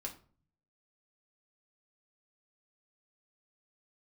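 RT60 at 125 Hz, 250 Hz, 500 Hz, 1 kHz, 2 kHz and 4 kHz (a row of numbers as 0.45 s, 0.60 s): 0.90 s, 0.70 s, 0.45 s, 0.40 s, 0.30 s, 0.30 s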